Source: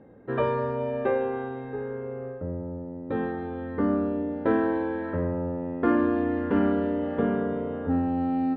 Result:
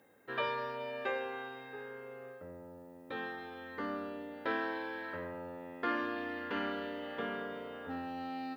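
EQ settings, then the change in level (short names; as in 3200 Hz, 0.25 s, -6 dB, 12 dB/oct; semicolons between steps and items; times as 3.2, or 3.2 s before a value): differentiator; low shelf 120 Hz +8.5 dB; high shelf 3000 Hz +6.5 dB; +9.5 dB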